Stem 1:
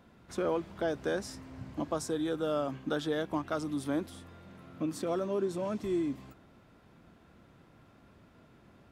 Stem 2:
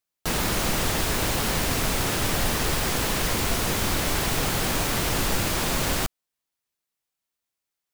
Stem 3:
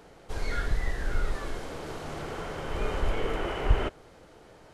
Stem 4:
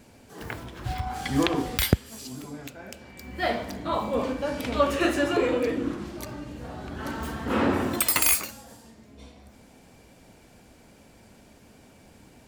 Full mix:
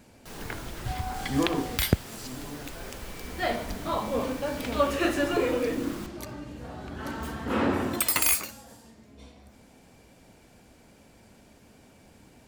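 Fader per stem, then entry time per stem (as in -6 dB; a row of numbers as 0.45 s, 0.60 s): mute, -19.0 dB, -16.5 dB, -2.0 dB; mute, 0.00 s, 0.00 s, 0.00 s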